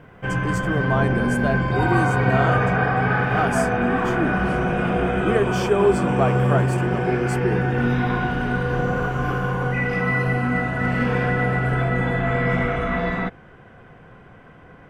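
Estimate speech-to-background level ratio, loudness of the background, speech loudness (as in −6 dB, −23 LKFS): −4.5 dB, −21.5 LKFS, −26.0 LKFS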